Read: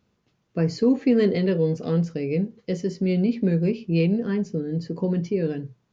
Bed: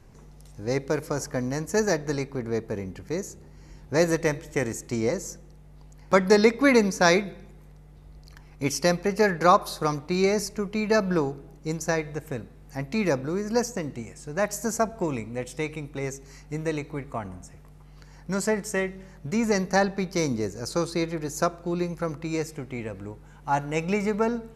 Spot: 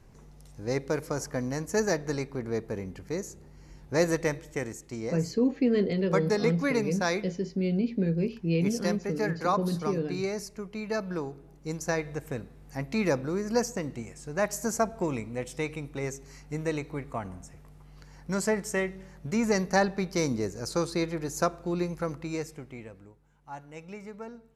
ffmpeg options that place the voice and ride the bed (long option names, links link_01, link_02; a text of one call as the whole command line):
ffmpeg -i stem1.wav -i stem2.wav -filter_complex "[0:a]adelay=4550,volume=-5.5dB[link_01];[1:a]volume=4dB,afade=type=out:start_time=4.18:duration=0.65:silence=0.501187,afade=type=in:start_time=11.19:duration=0.98:silence=0.446684,afade=type=out:start_time=21.97:duration=1.18:silence=0.177828[link_02];[link_01][link_02]amix=inputs=2:normalize=0" out.wav